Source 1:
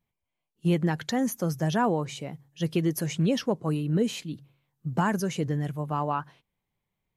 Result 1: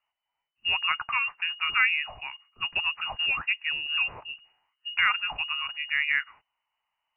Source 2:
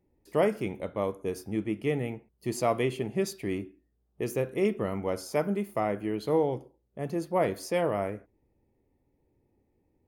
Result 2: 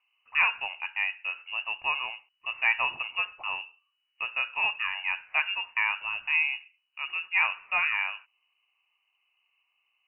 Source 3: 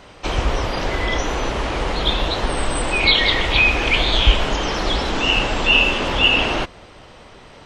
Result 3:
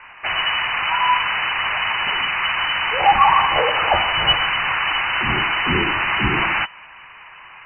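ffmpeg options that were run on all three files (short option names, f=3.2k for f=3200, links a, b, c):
-af "tiltshelf=f=630:g=-6,lowpass=f=2.6k:t=q:w=0.5098,lowpass=f=2.6k:t=q:w=0.6013,lowpass=f=2.6k:t=q:w=0.9,lowpass=f=2.6k:t=q:w=2.563,afreqshift=-3000,equalizer=f=250:t=o:w=1:g=-8,equalizer=f=500:t=o:w=1:g=-10,equalizer=f=1k:t=o:w=1:g=8"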